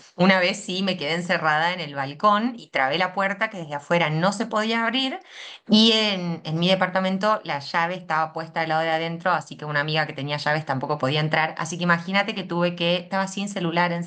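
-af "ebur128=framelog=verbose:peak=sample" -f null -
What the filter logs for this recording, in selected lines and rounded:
Integrated loudness:
  I:         -22.6 LUFS
  Threshold: -32.7 LUFS
Loudness range:
  LRA:         3.0 LU
  Threshold: -42.8 LUFS
  LRA low:   -24.3 LUFS
  LRA high:  -21.4 LUFS
Sample peak:
  Peak:       -4.4 dBFS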